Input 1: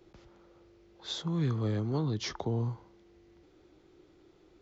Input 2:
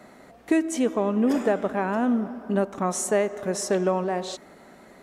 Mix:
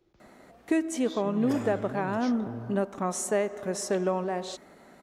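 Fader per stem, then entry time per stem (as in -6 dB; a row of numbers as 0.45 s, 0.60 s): -9.0 dB, -4.0 dB; 0.00 s, 0.20 s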